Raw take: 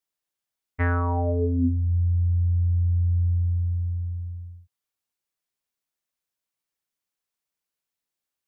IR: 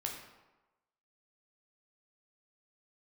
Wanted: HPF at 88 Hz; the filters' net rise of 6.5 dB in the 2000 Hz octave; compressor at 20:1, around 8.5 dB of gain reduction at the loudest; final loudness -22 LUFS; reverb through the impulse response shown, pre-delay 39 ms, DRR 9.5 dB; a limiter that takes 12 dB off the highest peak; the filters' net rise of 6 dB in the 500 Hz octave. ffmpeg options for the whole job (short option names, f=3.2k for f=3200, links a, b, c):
-filter_complex "[0:a]highpass=88,equalizer=f=500:t=o:g=7,equalizer=f=2k:t=o:g=8,acompressor=threshold=-25dB:ratio=20,alimiter=limit=-24dB:level=0:latency=1,asplit=2[a][b];[1:a]atrim=start_sample=2205,adelay=39[c];[b][c]afir=irnorm=-1:irlink=0,volume=-10.5dB[d];[a][d]amix=inputs=2:normalize=0,volume=8dB"